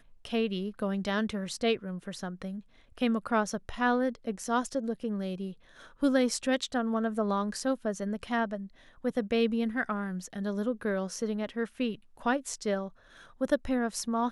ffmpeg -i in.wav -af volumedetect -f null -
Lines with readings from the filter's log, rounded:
mean_volume: -31.3 dB
max_volume: -12.4 dB